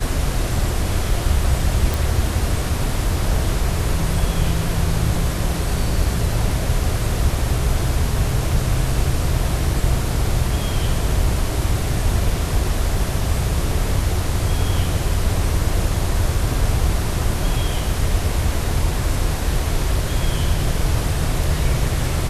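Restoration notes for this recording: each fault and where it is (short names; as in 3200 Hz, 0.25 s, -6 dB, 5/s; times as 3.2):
1.94 pop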